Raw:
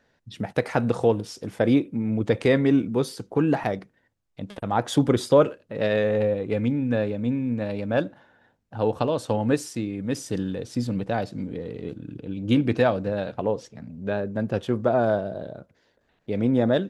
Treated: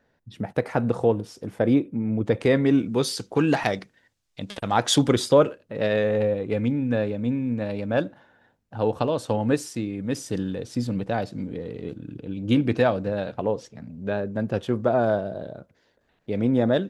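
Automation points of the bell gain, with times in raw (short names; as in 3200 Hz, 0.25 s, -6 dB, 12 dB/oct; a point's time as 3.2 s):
bell 5200 Hz 2.9 oct
2.15 s -6.5 dB
2.66 s 0 dB
3.16 s +11.5 dB
4.95 s +11.5 dB
5.45 s 0 dB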